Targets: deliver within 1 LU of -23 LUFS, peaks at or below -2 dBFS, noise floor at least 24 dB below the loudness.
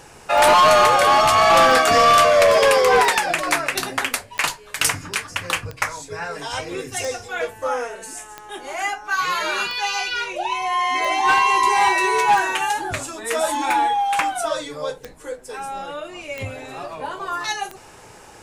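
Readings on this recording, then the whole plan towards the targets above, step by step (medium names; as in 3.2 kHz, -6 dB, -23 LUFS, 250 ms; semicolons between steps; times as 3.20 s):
clicks found 14; loudness -18.5 LUFS; peak level -8.5 dBFS; loudness target -23.0 LUFS
-> de-click; trim -4.5 dB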